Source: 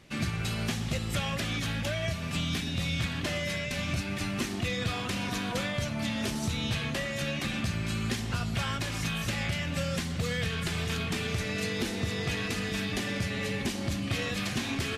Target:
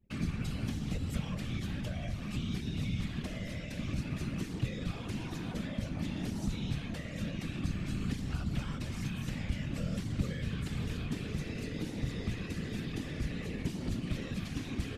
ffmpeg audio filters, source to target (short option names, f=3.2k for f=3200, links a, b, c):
-filter_complex "[0:a]afftfilt=real='hypot(re,im)*cos(2*PI*random(0))':imag='hypot(re,im)*sin(2*PI*random(1))':win_size=512:overlap=0.75,anlmdn=0.001,acrossover=split=320[a][b];[b]acompressor=threshold=-51dB:ratio=4[c];[a][c]amix=inputs=2:normalize=0,volume=4dB"